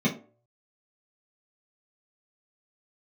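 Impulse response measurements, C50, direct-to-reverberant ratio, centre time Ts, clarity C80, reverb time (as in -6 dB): 11.0 dB, -7.0 dB, 18 ms, 17.0 dB, 0.45 s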